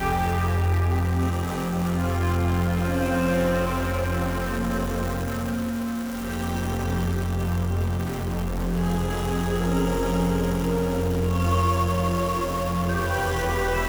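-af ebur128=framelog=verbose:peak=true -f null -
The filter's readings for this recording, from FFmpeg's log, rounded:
Integrated loudness:
  I:         -24.9 LUFS
  Threshold: -34.9 LUFS
Loudness range:
  LRA:         3.3 LU
  Threshold: -45.1 LUFS
  LRA low:   -27.1 LUFS
  LRA high:  -23.8 LUFS
True peak:
  Peak:      -11.1 dBFS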